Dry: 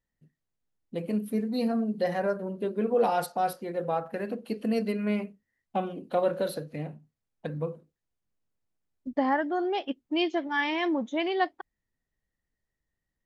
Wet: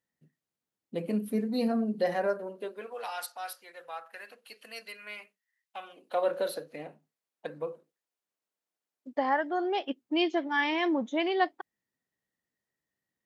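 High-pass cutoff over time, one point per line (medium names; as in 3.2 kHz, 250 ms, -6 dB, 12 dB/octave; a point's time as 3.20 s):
1.88 s 160 Hz
2.66 s 570 Hz
3.03 s 1.5 kHz
5.78 s 1.5 kHz
6.31 s 410 Hz
9.42 s 410 Hz
10.18 s 170 Hz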